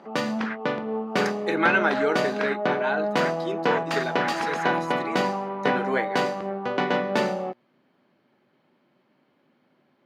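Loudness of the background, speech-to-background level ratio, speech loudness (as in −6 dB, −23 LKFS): −26.5 LKFS, −2.0 dB, −28.5 LKFS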